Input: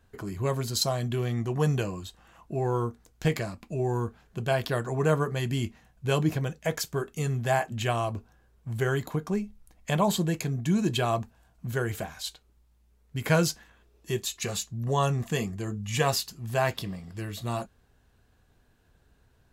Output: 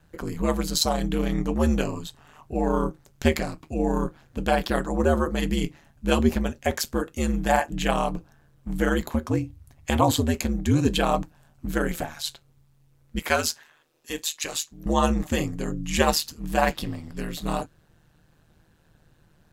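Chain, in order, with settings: 4.86–5.35 s: peaking EQ 2.2 kHz -7.5 dB 0.81 oct; 13.19–14.86 s: high-pass 760 Hz 6 dB/octave; ring modulator 77 Hz; trim +7 dB

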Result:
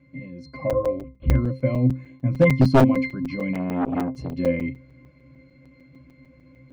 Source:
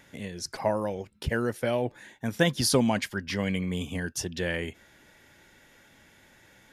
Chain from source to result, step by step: peaking EQ 190 Hz +11 dB 2.1 oct; hum notches 50/100 Hz; 0.72–1.35 s: LPC vocoder at 8 kHz pitch kept; 1.88–2.40 s: doubling 16 ms -3 dB; peaking EQ 2.4 kHz +7 dB 0.87 oct; pitch-class resonator C, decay 0.26 s; level rider gain up to 5.5 dB; wavefolder -16.5 dBFS; crackling interface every 0.15 s, samples 256, zero, from 0.70 s; 3.53–4.38 s: transformer saturation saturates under 650 Hz; trim +9 dB

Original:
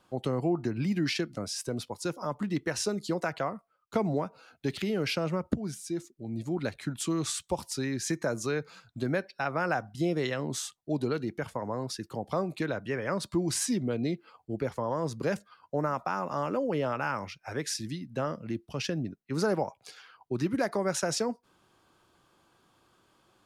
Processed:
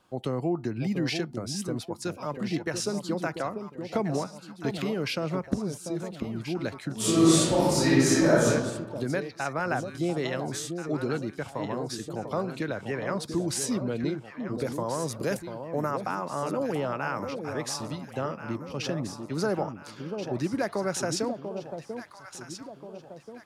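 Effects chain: 14.55–15.91 s: peaking EQ 12 kHz +13.5 dB 1.4 oct; echo whose repeats swap between lows and highs 691 ms, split 890 Hz, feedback 65%, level -6.5 dB; 6.95–8.46 s: reverb throw, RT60 1.3 s, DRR -10 dB

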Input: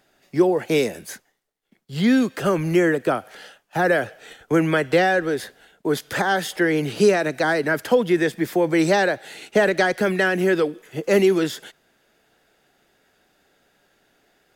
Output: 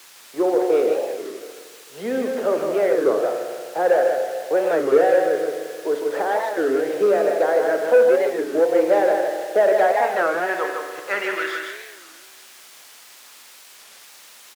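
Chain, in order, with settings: band-pass sweep 510 Hz -> 4.7 kHz, 9.44–13.25 s; spring tank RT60 2.1 s, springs 34/44 ms, chirp 70 ms, DRR 4.5 dB; waveshaping leveller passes 1; word length cut 8-bit, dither triangular; frequency weighting A; delay 157 ms -5 dB; warped record 33 1/3 rpm, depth 250 cents; trim +3.5 dB

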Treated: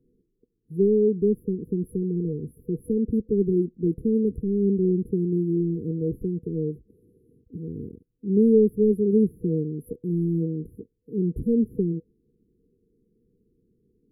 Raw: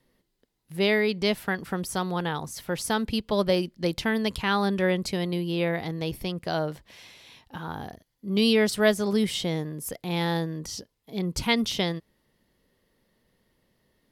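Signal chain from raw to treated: overdrive pedal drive 10 dB, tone 1.5 kHz, clips at -7.5 dBFS; tilt shelf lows +8 dB, about 930 Hz; FFT band-reject 490–10000 Hz

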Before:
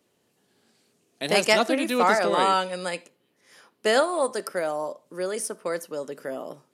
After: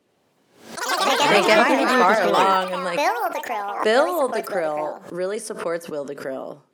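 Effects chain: treble shelf 4.6 kHz -10 dB; ever faster or slower copies 87 ms, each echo +5 st, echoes 3; swell ahead of each attack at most 110 dB/s; trim +3.5 dB

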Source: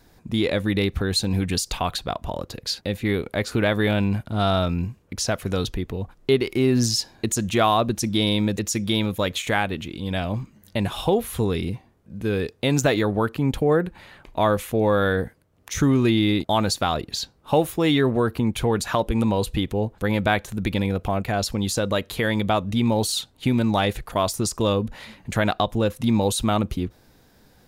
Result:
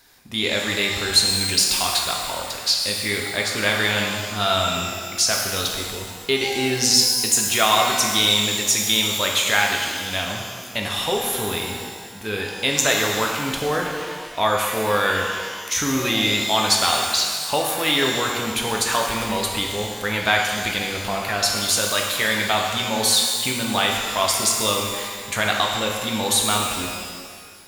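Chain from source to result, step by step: tilt shelf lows -9.5 dB, about 730 Hz; pitch-shifted reverb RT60 1.8 s, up +12 st, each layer -8 dB, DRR 0 dB; trim -2.5 dB

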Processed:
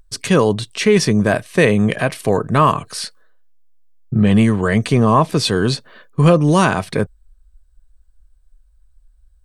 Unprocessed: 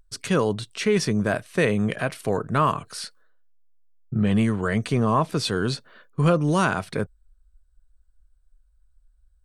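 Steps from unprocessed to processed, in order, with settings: band-stop 1.4 kHz, Q 7.9; trim +8 dB

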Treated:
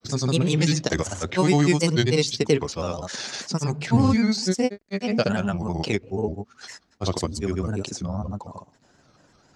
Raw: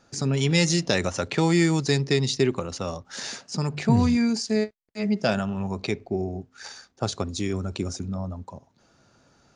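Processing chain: granulator, pitch spread up and down by 3 st; trim +3 dB

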